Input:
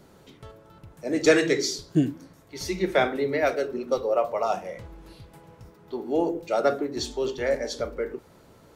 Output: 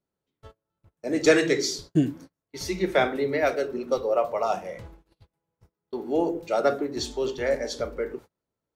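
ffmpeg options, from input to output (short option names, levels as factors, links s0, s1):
-af "agate=range=0.0224:threshold=0.00794:ratio=16:detection=peak"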